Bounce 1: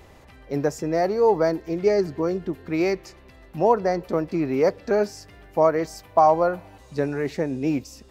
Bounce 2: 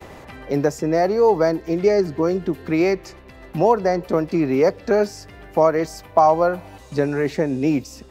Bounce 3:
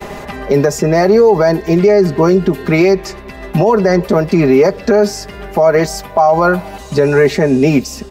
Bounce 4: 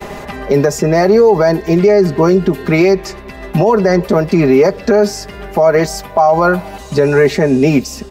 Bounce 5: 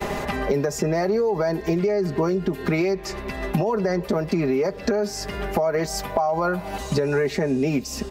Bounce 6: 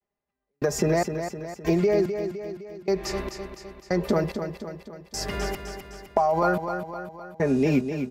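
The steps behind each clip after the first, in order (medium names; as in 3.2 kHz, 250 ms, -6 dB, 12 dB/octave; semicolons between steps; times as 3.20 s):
expander -45 dBFS; three bands compressed up and down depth 40%; trim +3.5 dB
comb 4.9 ms, depth 64%; loudness maximiser +12.5 dB; trim -1 dB
no audible change
compression 6:1, threshold -20 dBFS, peak gain reduction 13.5 dB
trance gate "...xx...xx." 73 bpm -60 dB; on a send: feedback delay 256 ms, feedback 53%, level -8 dB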